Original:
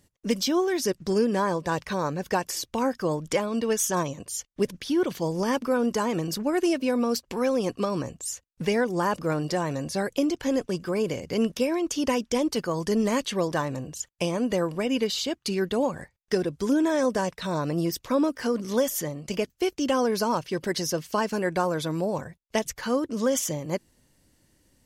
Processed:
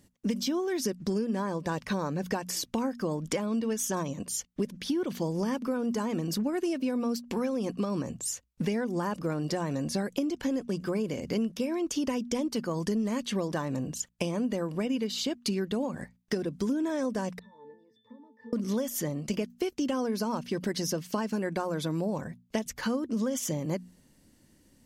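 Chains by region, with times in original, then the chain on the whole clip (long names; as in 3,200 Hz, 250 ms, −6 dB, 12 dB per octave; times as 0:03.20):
0:17.39–0:18.53: high-pass filter 240 Hz + downward compressor 3 to 1, threshold −31 dBFS + resonances in every octave A, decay 0.38 s
whole clip: parametric band 220 Hz +8 dB 0.9 octaves; mains-hum notches 60/120/180/240 Hz; downward compressor, threshold −27 dBFS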